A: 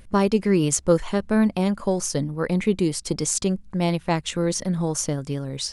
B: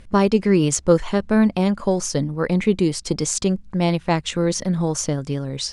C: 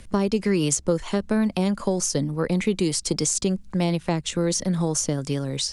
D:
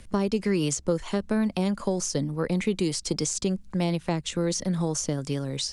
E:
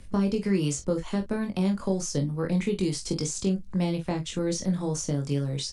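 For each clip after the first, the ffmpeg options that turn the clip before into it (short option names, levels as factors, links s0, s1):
-af "lowpass=7800,volume=1.41"
-filter_complex "[0:a]acrossover=split=130|530[s0][s1][s2];[s0]acompressor=threshold=0.0141:ratio=4[s3];[s1]acompressor=threshold=0.0891:ratio=4[s4];[s2]acompressor=threshold=0.0282:ratio=4[s5];[s3][s4][s5]amix=inputs=3:normalize=0,highshelf=f=5000:g=12"
-filter_complex "[0:a]acrossover=split=7800[s0][s1];[s1]acompressor=threshold=0.0141:ratio=4:attack=1:release=60[s2];[s0][s2]amix=inputs=2:normalize=0,volume=0.708"
-filter_complex "[0:a]lowshelf=f=270:g=6,asplit=2[s0][s1];[s1]aecho=0:1:21|45|57:0.596|0.266|0.15[s2];[s0][s2]amix=inputs=2:normalize=0,volume=0.562"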